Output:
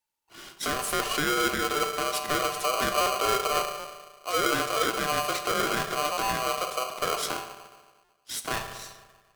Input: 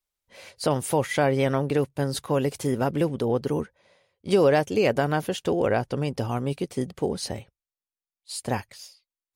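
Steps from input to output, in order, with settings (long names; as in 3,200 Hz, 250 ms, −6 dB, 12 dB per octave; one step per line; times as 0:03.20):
0:01.12–0:01.83: low shelf with overshoot 370 Hz −6.5 dB, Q 3
brickwall limiter −19 dBFS, peak gain reduction 10.5 dB
feedback delay network reverb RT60 1.4 s, low-frequency decay 1.05×, high-frequency decay 0.45×, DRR 5.5 dB
buffer that repeats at 0:00.94/0:03.01/0:03.79/0:06.12/0:08.04, samples 256, times 8
ring modulator with a square carrier 890 Hz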